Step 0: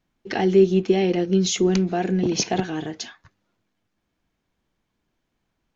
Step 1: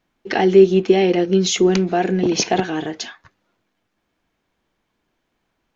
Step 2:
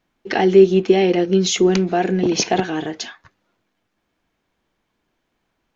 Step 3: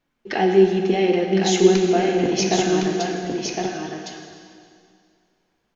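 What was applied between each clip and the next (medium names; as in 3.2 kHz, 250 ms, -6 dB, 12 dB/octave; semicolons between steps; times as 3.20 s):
tone controls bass -7 dB, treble -4 dB; trim +6.5 dB
no audible change
flange 0.93 Hz, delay 3.3 ms, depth 2.6 ms, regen +71%; delay 1061 ms -4.5 dB; plate-style reverb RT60 2.3 s, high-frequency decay 0.95×, DRR 2.5 dB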